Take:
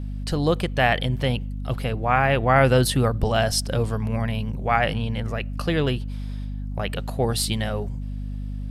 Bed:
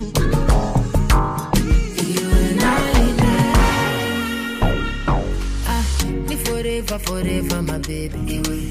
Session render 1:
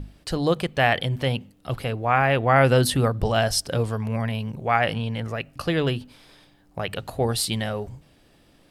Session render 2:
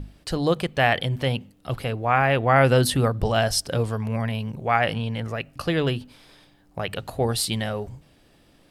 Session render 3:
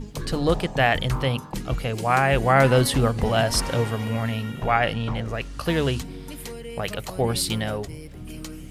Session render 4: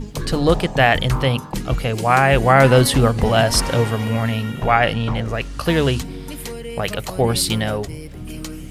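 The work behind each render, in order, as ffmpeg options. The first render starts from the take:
-af "bandreject=f=50:t=h:w=6,bandreject=f=100:t=h:w=6,bandreject=f=150:t=h:w=6,bandreject=f=200:t=h:w=6,bandreject=f=250:t=h:w=6"
-af anull
-filter_complex "[1:a]volume=-14.5dB[a];[0:a][a]amix=inputs=2:normalize=0"
-af "volume=5.5dB,alimiter=limit=-1dB:level=0:latency=1"

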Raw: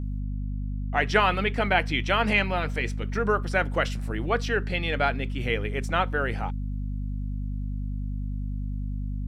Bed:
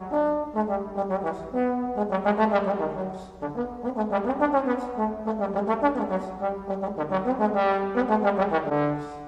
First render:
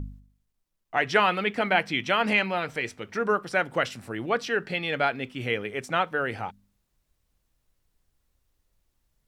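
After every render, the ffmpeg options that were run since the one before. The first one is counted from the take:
-af "bandreject=f=50:t=h:w=4,bandreject=f=100:t=h:w=4,bandreject=f=150:t=h:w=4,bandreject=f=200:t=h:w=4,bandreject=f=250:t=h:w=4"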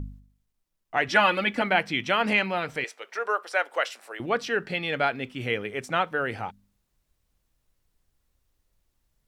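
-filter_complex "[0:a]asettb=1/sr,asplit=3[a][b][c];[a]atrim=end=1.084[d];[b]atrim=start=1.08:end=1.62,asetpts=PTS-STARTPTS,afade=t=in:d=0.004:c=qsin,afade=t=out:st=0.536:d=0.004:c=qsin,aecho=1:1:3.5:0.83,atrim=end_sample=23814[e];[c]atrim=start=1.616[f];[d][e]acrossfade=d=0.004:c1=hsin:c2=qsin[g];[g][f]acrossfade=d=0.004:c1=qsin:c2=hsin,asettb=1/sr,asplit=3[h][i][j];[h]atrim=end=2.844[k];[i]atrim=start=2.84:end=4.2,asetpts=PTS-STARTPTS,afade=t=in:d=0.004:c=qsin,afade=t=out:st=1.356:d=0.004:c=qsin,highpass=f=490:w=0.5412,highpass=f=490:w=1.3066[l];[j]atrim=start=4.196[m];[k][l]acrossfade=d=0.004:c1=hsin:c2=qsin[n];[n][m]acrossfade=d=0.004:c1=qsin:c2=hsin"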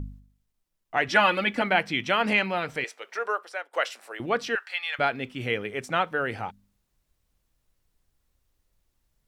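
-filter_complex "[0:a]asettb=1/sr,asplit=3[a][b][c];[a]atrim=end=4.554[d];[b]atrim=start=4.55:end=4.99,asetpts=PTS-STARTPTS,afade=t=in:d=0.004:c=qsin,afade=t=out:st=0.436:d=0.004:c=qsin,highpass=f=960:w=0.5412,highpass=f=960:w=1.3066[e];[c]atrim=start=4.986[f];[d][e]acrossfade=d=0.004:c1=hsin:c2=qsin[g];[g][f]acrossfade=d=0.004:c1=qsin:c2=hsin,asplit=2[h][i];[h]atrim=end=3.73,asetpts=PTS-STARTPTS,afade=t=out:st=3.23:d=0.5:silence=0.0891251[j];[i]atrim=start=3.73,asetpts=PTS-STARTPTS,afade=t=in:d=0.004:c=hsin:silence=0.0891251[k];[j][k]concat=n=2:v=0:a=1"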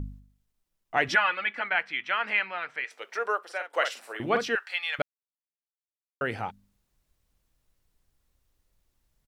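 -filter_complex "[0:a]asplit=3[a][b][c];[a]afade=t=out:st=1.14:d=0.02[d];[b]bandpass=f=1.7k:t=q:w=1.4,afade=t=in:st=1.14:d=0.02,afade=t=out:st=2.9:d=0.02[e];[c]afade=t=in:st=2.9:d=0.02[f];[d][e][f]amix=inputs=3:normalize=0,asplit=3[g][h][i];[g]afade=t=out:st=3.47:d=0.02[j];[h]asplit=2[k][l];[l]adelay=47,volume=-7dB[m];[k][m]amix=inputs=2:normalize=0,afade=t=in:st=3.47:d=0.02,afade=t=out:st=4.43:d=0.02[n];[i]afade=t=in:st=4.43:d=0.02[o];[j][n][o]amix=inputs=3:normalize=0,asplit=3[p][q][r];[p]atrim=end=5.02,asetpts=PTS-STARTPTS,afade=t=out:st=5.016:d=0.004:c=hsin[s];[q]atrim=start=5.02:end=6.21,asetpts=PTS-STARTPTS,volume=0[t];[r]atrim=start=6.21,asetpts=PTS-STARTPTS,afade=t=in:d=0.004:c=hsin[u];[s][t][u]concat=n=3:v=0:a=1"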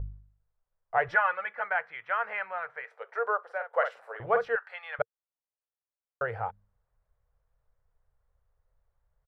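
-af "firequalizer=gain_entry='entry(110,0);entry(270,-26);entry(460,2);entry(1500,-1);entry(2600,-16);entry(5800,-25)':delay=0.05:min_phase=1"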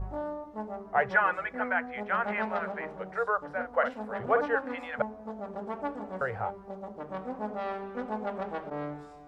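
-filter_complex "[1:a]volume=-12dB[a];[0:a][a]amix=inputs=2:normalize=0"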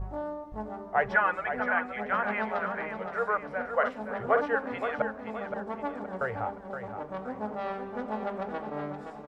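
-af "aecho=1:1:520|1040|1560|2080|2600:0.398|0.167|0.0702|0.0295|0.0124"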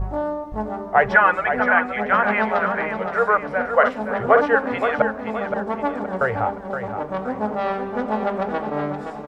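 -af "volume=10.5dB,alimiter=limit=-2dB:level=0:latency=1"

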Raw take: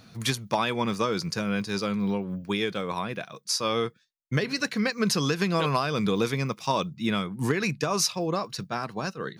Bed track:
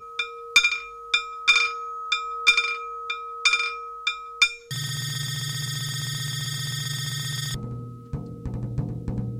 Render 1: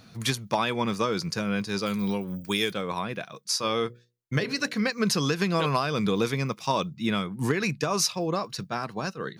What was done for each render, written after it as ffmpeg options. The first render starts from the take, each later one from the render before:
-filter_complex "[0:a]asettb=1/sr,asplit=3[a][b][c];[a]atrim=end=1.864[d];[b]atrim=start=1.86:end=2.73,asetpts=PTS-STARTPTS,afade=t=in:d=0.004:c=qsin,afade=t=out:st=0.866:d=0.004:c=qsin,aemphasis=mode=production:type=75fm[e];[c]atrim=start=2.726[f];[d][e]acrossfade=d=0.004:c1=hsin:c2=qsin[g];[g][f]acrossfade=d=0.004:c1=qsin:c2=hsin,asettb=1/sr,asplit=3[h][i][j];[h]atrim=end=3.524[k];[i]atrim=start=3.52:end=4.82,asetpts=PTS-STARTPTS,afade=t=in:d=0.004:c=qsin,afade=t=out:st=1.296:d=0.004:c=qsin,bandreject=f=60:t=h:w=6,bandreject=f=120:t=h:w=6,bandreject=f=180:t=h:w=6,bandreject=f=240:t=h:w=6,bandreject=f=300:t=h:w=6,bandreject=f=360:t=h:w=6,bandreject=f=420:t=h:w=6,bandreject=f=480:t=h:w=6,bandreject=f=540:t=h:w=6,bandreject=f=600:t=h:w=6[l];[j]atrim=start=4.816[m];[k][l]acrossfade=d=0.004:c1=hsin:c2=qsin[n];[n][m]acrossfade=d=0.004:c1=qsin:c2=hsin"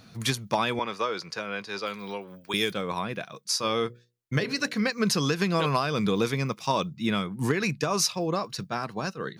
-filter_complex "[0:a]asettb=1/sr,asplit=3[a][b][c];[a]atrim=end=0.794[d];[b]atrim=start=0.79:end=2.54,asetpts=PTS-STARTPTS,afade=t=in:d=0.004:c=qsin,afade=t=out:st=1.746:d=0.004:c=qsin,acrossover=split=390 4800:gain=0.158 1 0.251[e][f][g];[e][f][g]amix=inputs=3:normalize=0[h];[c]atrim=start=2.536[i];[d][h]acrossfade=d=0.004:c1=hsin:c2=qsin[j];[j][i]acrossfade=d=0.004:c1=qsin:c2=hsin"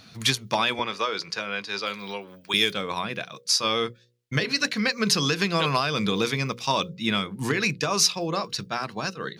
-af "equalizer=f=3.6k:w=0.59:g=7,bandreject=f=60:t=h:w=6,bandreject=f=120:t=h:w=6,bandreject=f=180:t=h:w=6,bandreject=f=240:t=h:w=6,bandreject=f=300:t=h:w=6,bandreject=f=360:t=h:w=6,bandreject=f=420:t=h:w=6,bandreject=f=480:t=h:w=6,bandreject=f=540:t=h:w=6"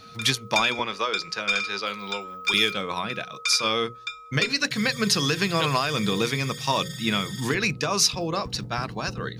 -filter_complex "[1:a]volume=-7.5dB[a];[0:a][a]amix=inputs=2:normalize=0"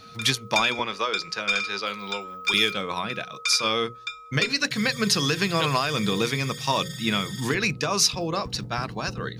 -af anull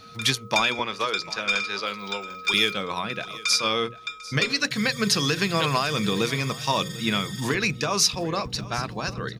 -af "aecho=1:1:746|1492:0.119|0.0202"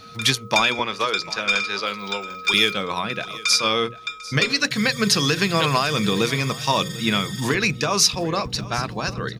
-af "volume=3.5dB"

